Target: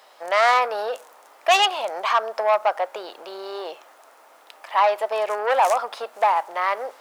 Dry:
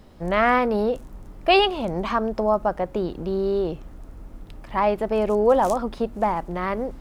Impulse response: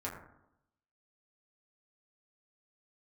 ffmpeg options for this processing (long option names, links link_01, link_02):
-filter_complex "[0:a]asoftclip=type=tanh:threshold=-16.5dB,highpass=frequency=650:width=0.5412,highpass=frequency=650:width=1.3066,asplit=2[link_01][link_02];[1:a]atrim=start_sample=2205[link_03];[link_02][link_03]afir=irnorm=-1:irlink=0,volume=-21dB[link_04];[link_01][link_04]amix=inputs=2:normalize=0,volume=7dB"